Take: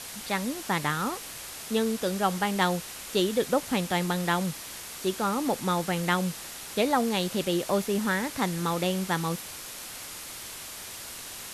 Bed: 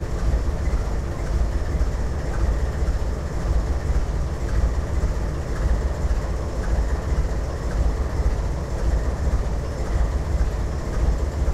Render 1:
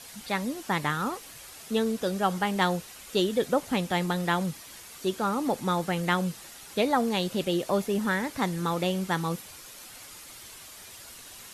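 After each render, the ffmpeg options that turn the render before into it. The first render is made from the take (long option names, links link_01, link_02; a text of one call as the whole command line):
ffmpeg -i in.wav -af "afftdn=noise_reduction=8:noise_floor=-41" out.wav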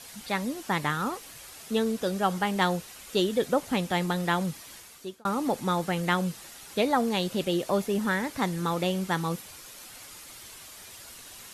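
ffmpeg -i in.wav -filter_complex "[0:a]asplit=2[link_01][link_02];[link_01]atrim=end=5.25,asetpts=PTS-STARTPTS,afade=type=out:start_time=4.72:duration=0.53[link_03];[link_02]atrim=start=5.25,asetpts=PTS-STARTPTS,afade=type=in:duration=0.004:curve=hsin[link_04];[link_03][link_04]concat=n=2:v=0:a=1" out.wav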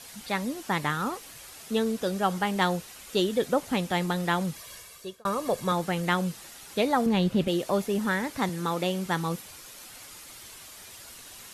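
ffmpeg -i in.wav -filter_complex "[0:a]asettb=1/sr,asplit=3[link_01][link_02][link_03];[link_01]atrim=end=4.564[link_04];[link_02]atrim=start=4.56:end=5.72,asetpts=PTS-STARTPTS,afade=type=in:duration=0.004:curve=qsin,afade=type=out:start_time=1.156:duration=0.004:curve=qsin,aecho=1:1:1.8:0.65,atrim=end_sample=51156[link_05];[link_03]atrim=start=5.716[link_06];[link_04][link_05]acrossfade=duration=0.004:curve1=hsin:curve2=qsin[link_07];[link_07][link_06]acrossfade=duration=0.004:curve1=qsin:curve2=hsin,asettb=1/sr,asplit=3[link_08][link_09][link_10];[link_08]atrim=end=7.064[link_11];[link_09]atrim=start=7.06:end=7.48,asetpts=PTS-STARTPTS,afade=type=in:duration=0.004:curve=qsin,afade=type=out:start_time=0.416:duration=0.004:curve=qsin,bass=frequency=250:gain=10,treble=frequency=4000:gain=-8[link_12];[link_10]atrim=start=7.476[link_13];[link_11][link_12]acrossfade=duration=0.004:curve1=hsin:curve2=qsin[link_14];[link_14][link_13]acrossfade=duration=0.004:curve1=qsin:curve2=hsin,asettb=1/sr,asplit=3[link_15][link_16][link_17];[link_15]atrim=end=8.494[link_18];[link_16]atrim=start=8.49:end=9.06,asetpts=PTS-STARTPTS,afade=type=in:duration=0.004:curve=qsin,afade=type=out:start_time=0.566:duration=0.004:curve=qsin,highpass=150[link_19];[link_17]atrim=start=9.056[link_20];[link_18][link_19]acrossfade=duration=0.004:curve1=hsin:curve2=qsin[link_21];[link_21][link_20]acrossfade=duration=0.004:curve1=qsin:curve2=hsin" out.wav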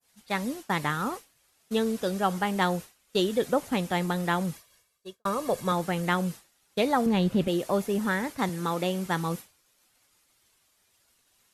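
ffmpeg -i in.wav -af "agate=range=-33dB:threshold=-32dB:ratio=3:detection=peak,adynamicequalizer=threshold=0.00631:dfrequency=3900:dqfactor=0.85:tfrequency=3900:tqfactor=0.85:attack=5:release=100:ratio=0.375:range=2:mode=cutabove:tftype=bell" out.wav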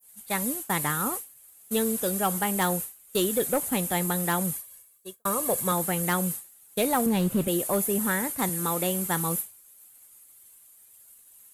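ffmpeg -i in.wav -af "aexciter=amount=6.1:drive=7.2:freq=7600,asoftclip=type=hard:threshold=-18dB" out.wav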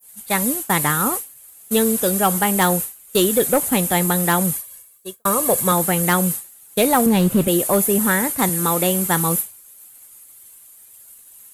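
ffmpeg -i in.wav -af "volume=8.5dB" out.wav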